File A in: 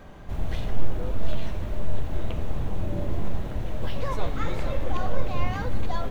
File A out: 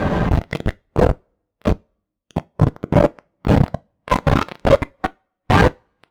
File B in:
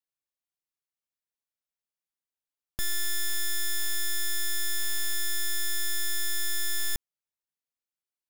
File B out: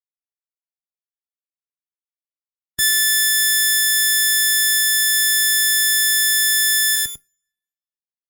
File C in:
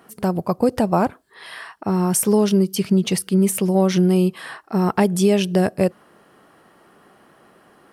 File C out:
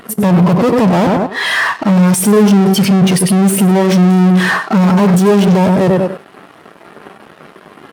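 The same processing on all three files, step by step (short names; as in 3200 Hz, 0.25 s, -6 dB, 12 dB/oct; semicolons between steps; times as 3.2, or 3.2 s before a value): on a send: feedback echo 98 ms, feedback 31%, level -13 dB; on the sum: fuzz box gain 43 dB, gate -51 dBFS; HPF 100 Hz 6 dB/oct; two-slope reverb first 0.38 s, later 1.6 s, from -18 dB, DRR 15.5 dB; spectral expander 1.5:1; gain +5 dB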